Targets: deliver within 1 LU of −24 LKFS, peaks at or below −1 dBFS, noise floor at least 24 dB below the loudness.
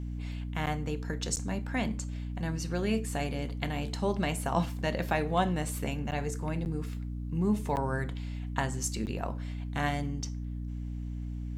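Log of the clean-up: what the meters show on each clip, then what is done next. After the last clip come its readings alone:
number of dropouts 6; longest dropout 9.2 ms; mains hum 60 Hz; hum harmonics up to 300 Hz; level of the hum −34 dBFS; integrated loudness −33.0 LKFS; sample peak −14.0 dBFS; target loudness −24.0 LKFS
→ repair the gap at 0:00.66/0:01.36/0:06.11/0:06.65/0:07.76/0:09.06, 9.2 ms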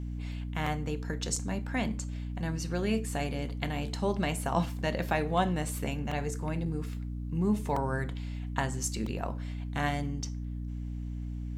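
number of dropouts 0; mains hum 60 Hz; hum harmonics up to 300 Hz; level of the hum −34 dBFS
→ mains-hum notches 60/120/180/240/300 Hz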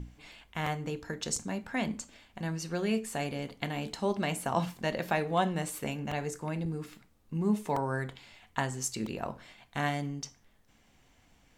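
mains hum none found; integrated loudness −34.0 LKFS; sample peak −14.5 dBFS; target loudness −24.0 LKFS
→ level +10 dB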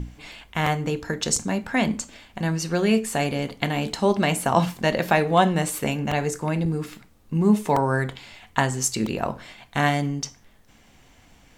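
integrated loudness −24.0 LKFS; sample peak −4.5 dBFS; background noise floor −55 dBFS

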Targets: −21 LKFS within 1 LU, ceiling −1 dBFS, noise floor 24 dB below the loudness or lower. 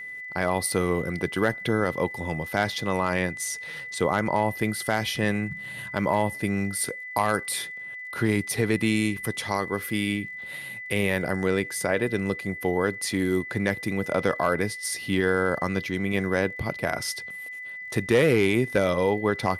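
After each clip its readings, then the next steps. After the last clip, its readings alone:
crackle rate 53 per second; interfering tone 2,000 Hz; level of the tone −35 dBFS; integrated loudness −26.0 LKFS; sample peak −10.0 dBFS; target loudness −21.0 LKFS
→ click removal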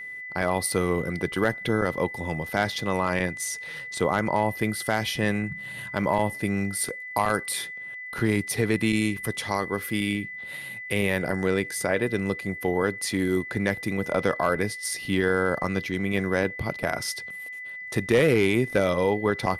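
crackle rate 0.10 per second; interfering tone 2,000 Hz; level of the tone −35 dBFS
→ notch filter 2,000 Hz, Q 30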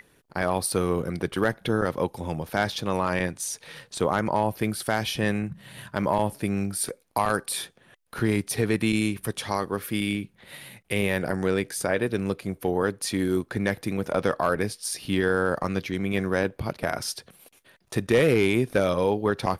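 interfering tone none found; integrated loudness −26.5 LKFS; sample peak −10.0 dBFS; target loudness −21.0 LKFS
→ level +5.5 dB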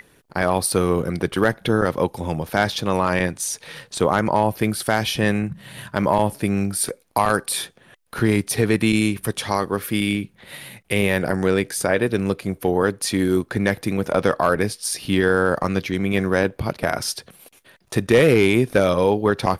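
integrated loudness −21.0 LKFS; sample peak −4.5 dBFS; background noise floor −57 dBFS

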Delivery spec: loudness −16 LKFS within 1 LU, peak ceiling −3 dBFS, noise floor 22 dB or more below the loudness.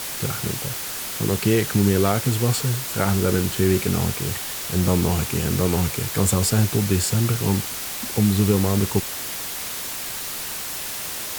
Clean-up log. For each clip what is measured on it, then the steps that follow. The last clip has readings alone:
background noise floor −30 dBFS; target noise floor −44 dBFS; integrated loudness −22.0 LKFS; sample peak −5.0 dBFS; target loudness −16.0 LKFS
→ broadband denoise 14 dB, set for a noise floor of −30 dBFS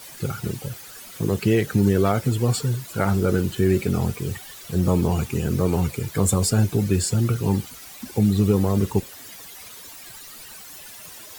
background noise floor −42 dBFS; target noise floor −45 dBFS
→ broadband denoise 6 dB, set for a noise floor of −42 dBFS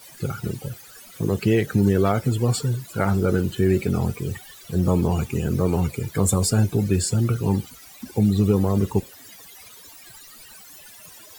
background noise floor −46 dBFS; integrated loudness −22.5 LKFS; sample peak −6.0 dBFS; target loudness −16.0 LKFS
→ level +6.5 dB
brickwall limiter −3 dBFS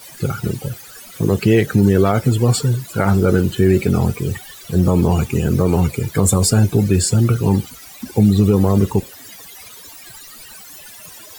integrated loudness −16.5 LKFS; sample peak −3.0 dBFS; background noise floor −39 dBFS

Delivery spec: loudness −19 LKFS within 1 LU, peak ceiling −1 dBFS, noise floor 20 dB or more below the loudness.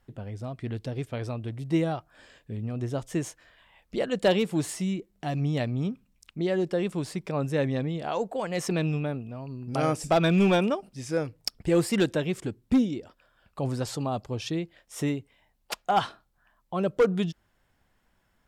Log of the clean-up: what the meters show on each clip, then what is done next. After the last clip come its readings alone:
share of clipped samples 0.4%; peaks flattened at −15.5 dBFS; integrated loudness −28.5 LKFS; sample peak −15.5 dBFS; target loudness −19.0 LKFS
→ clipped peaks rebuilt −15.5 dBFS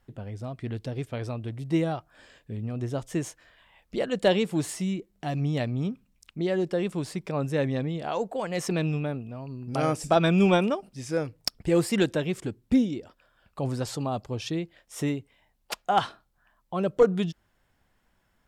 share of clipped samples 0.0%; integrated loudness −28.0 LKFS; sample peak −6.5 dBFS; target loudness −19.0 LKFS
→ level +9 dB
brickwall limiter −1 dBFS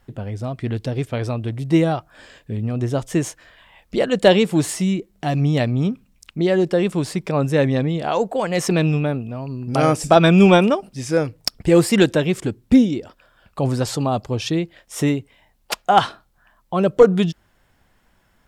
integrated loudness −19.5 LKFS; sample peak −1.0 dBFS; background noise floor −61 dBFS

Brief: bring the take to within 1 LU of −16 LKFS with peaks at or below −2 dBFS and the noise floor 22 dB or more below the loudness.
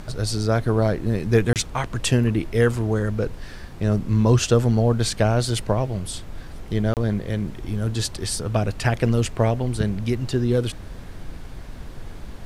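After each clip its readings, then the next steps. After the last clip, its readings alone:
number of dropouts 2; longest dropout 28 ms; background noise floor −38 dBFS; target noise floor −45 dBFS; integrated loudness −22.5 LKFS; sample peak −6.0 dBFS; target loudness −16.0 LKFS
→ repair the gap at 0:01.53/0:06.94, 28 ms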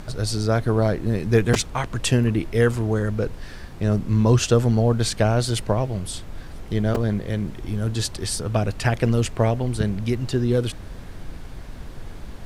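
number of dropouts 0; background noise floor −37 dBFS; target noise floor −45 dBFS
→ noise reduction from a noise print 8 dB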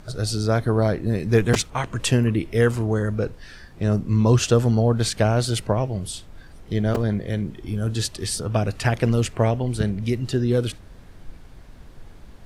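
background noise floor −45 dBFS; integrated loudness −22.5 LKFS; sample peak −5.0 dBFS; target loudness −16.0 LKFS
→ level +6.5 dB
brickwall limiter −2 dBFS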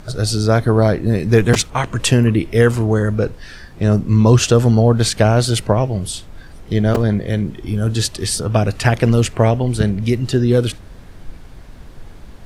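integrated loudness −16.0 LKFS; sample peak −2.0 dBFS; background noise floor −38 dBFS

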